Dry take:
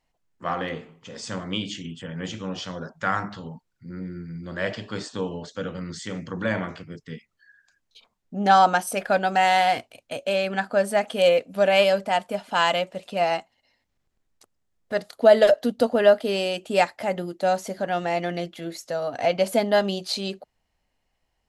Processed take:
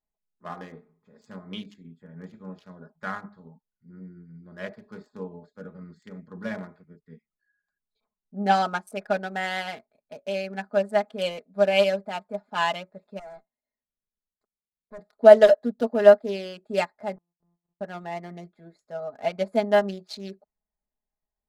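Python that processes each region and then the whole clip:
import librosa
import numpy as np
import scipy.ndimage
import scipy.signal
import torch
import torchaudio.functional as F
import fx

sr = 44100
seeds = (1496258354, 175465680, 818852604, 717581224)

y = fx.chain(x, sr, fx.notch(hz=840.0, q=7.9),
    fx.tube_stage(drive_db=29.0, bias=0.8), at=(13.19, 14.99))
y = fx.chain(y, sr, fx.sample_sort(block=256),
    fx.bessel_lowpass(hz=660.0, order=2),
    fx.gate_flip(shuts_db=-32.0, range_db=-35), at=(17.16, 17.81))
y = fx.wiener(y, sr, points=15)
y = y + 0.66 * np.pad(y, (int(4.8 * sr / 1000.0), 0))[:len(y)]
y = fx.upward_expand(y, sr, threshold_db=-40.0, expansion=1.5)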